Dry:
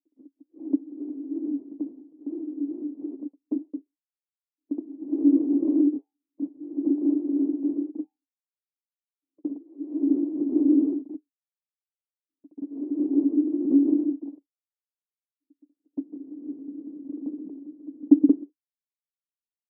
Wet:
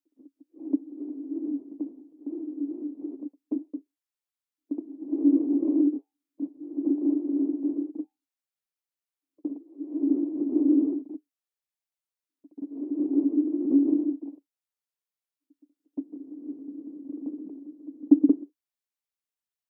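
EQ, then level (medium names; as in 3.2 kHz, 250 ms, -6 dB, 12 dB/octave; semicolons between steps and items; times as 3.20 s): bass shelf 340 Hz -5.5 dB; +1.5 dB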